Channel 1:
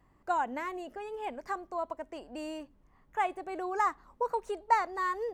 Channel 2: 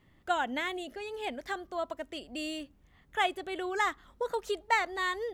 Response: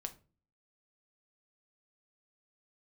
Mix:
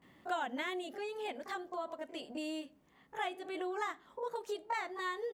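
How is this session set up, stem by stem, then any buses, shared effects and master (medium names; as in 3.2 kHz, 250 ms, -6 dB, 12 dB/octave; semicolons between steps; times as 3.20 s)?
-3.0 dB, 0.00 s, no send, spectrogram pixelated in time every 50 ms; tilt EQ -2.5 dB/octave
+3.0 dB, 19 ms, send -10 dB, auto duck -9 dB, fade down 1.85 s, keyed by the first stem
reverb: on, RT60 0.35 s, pre-delay 6 ms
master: high-pass 190 Hz 12 dB/octave; compression 2:1, threshold -41 dBFS, peak gain reduction 11 dB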